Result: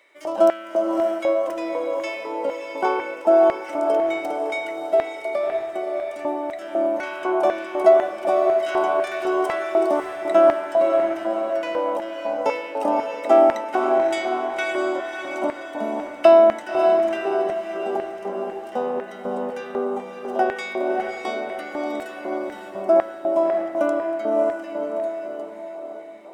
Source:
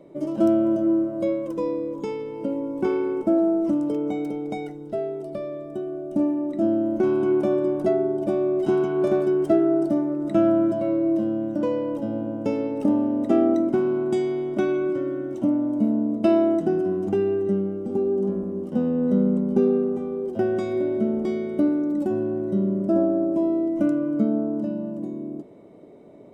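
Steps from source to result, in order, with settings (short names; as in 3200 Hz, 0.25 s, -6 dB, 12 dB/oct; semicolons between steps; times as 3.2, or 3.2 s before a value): LFO high-pass square 2 Hz 780–1900 Hz; diffused feedback echo 0.59 s, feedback 44%, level -5 dB; gain +7.5 dB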